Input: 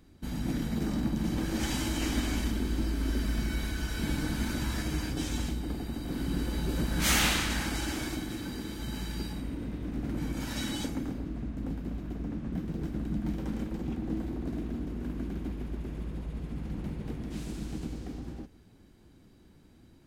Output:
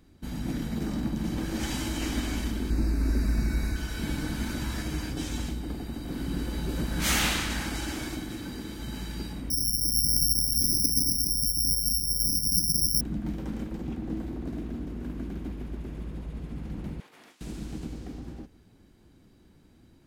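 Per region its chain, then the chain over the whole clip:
2.70–3.76 s: Butterworth band-stop 3.2 kHz, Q 2.8 + bass shelf 220 Hz +5.5 dB
9.50–13.01 s: resonances exaggerated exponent 3 + careless resampling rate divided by 8×, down filtered, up zero stuff
17.00–17.41 s: high-pass 930 Hz + compressor with a negative ratio -56 dBFS, ratio -0.5 + doubling 40 ms -9 dB
whole clip: none

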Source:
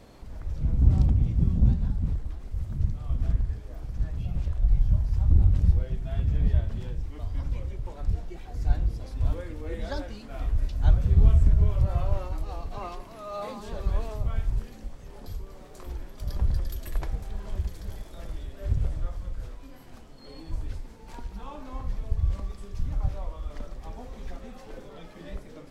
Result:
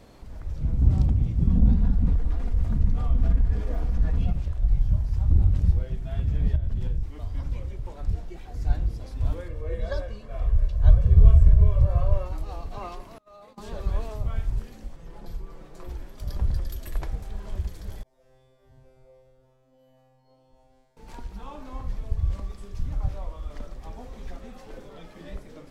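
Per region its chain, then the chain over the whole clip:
1.47–4.33 s: treble shelf 3.8 kHz -9.5 dB + comb 4.2 ms, depth 50% + level flattener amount 50%
6.55–7.03 s: compression, threshold -31 dBFS + bass shelf 160 Hz +11.5 dB
9.48–12.26 s: comb 1.8 ms, depth 71% + tape noise reduction on one side only decoder only
13.18–13.58 s: gate -36 dBFS, range -30 dB + compression 4:1, threshold -48 dBFS
14.96–15.89 s: treble shelf 3.6 kHz -8 dB + comb 6 ms, depth 68%
18.03–20.97 s: high-order bell 650 Hz +10 dB 1.3 oct + feedback comb 130 Hz, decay 1.7 s, mix 100% + tape noise reduction on one side only decoder only
whole clip: none

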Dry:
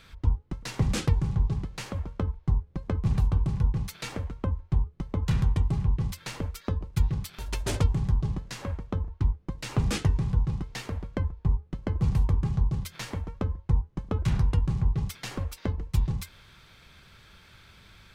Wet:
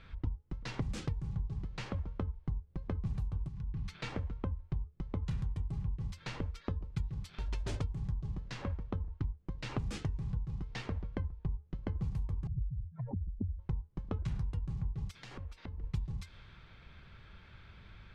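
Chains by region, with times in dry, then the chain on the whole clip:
3.48–3.97 s: compression 10:1, threshold -32 dBFS + peaking EQ 580 Hz -11.5 dB 0.72 oct
12.47–13.59 s: spectral contrast enhancement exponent 3.9 + resonant low-pass 710 Hz, resonance Q 7.6
15.11–15.84 s: treble shelf 6.3 kHz +9 dB + compression 12:1, threshold -40 dBFS
whole clip: level-controlled noise filter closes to 2.8 kHz, open at -19 dBFS; bass shelf 140 Hz +7 dB; compression 6:1, threshold -30 dBFS; trim -3.5 dB

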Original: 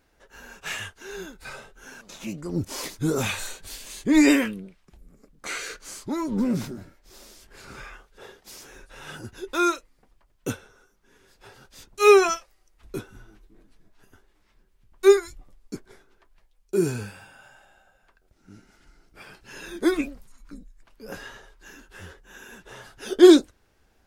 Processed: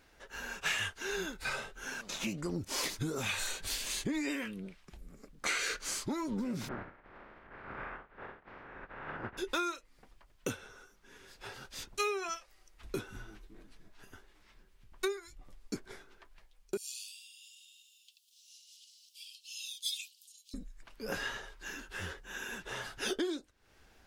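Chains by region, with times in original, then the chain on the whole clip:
6.67–9.37 s: spectral contrast reduction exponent 0.39 + low-pass 1.7 kHz 24 dB/octave
16.77–20.54 s: steep high-pass 2.9 kHz 72 dB/octave + tape noise reduction on one side only encoder only
whole clip: compression 20:1, threshold -33 dBFS; peaking EQ 2.9 kHz +5 dB 2.9 oct

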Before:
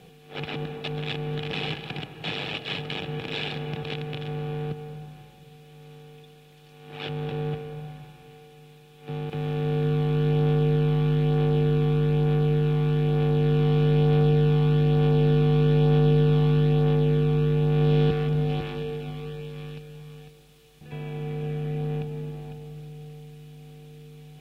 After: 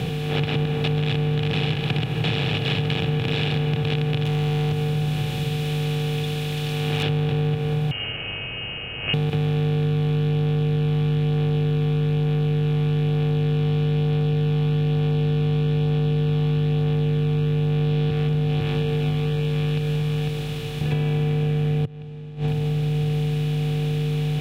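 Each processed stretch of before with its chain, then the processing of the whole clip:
4.25–7.03 s: treble shelf 3 kHz +10.5 dB + hard clipper -31.5 dBFS
7.91–9.14 s: frequency inversion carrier 3 kHz + peaking EQ 190 Hz -5.5 dB 2.1 oct
21.85–22.48 s: distance through air 80 m + inverted gate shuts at -29 dBFS, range -36 dB
whole clip: spectral levelling over time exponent 0.6; peaking EQ 110 Hz +12 dB 0.75 oct; compression, threshold -29 dBFS; trim +9 dB

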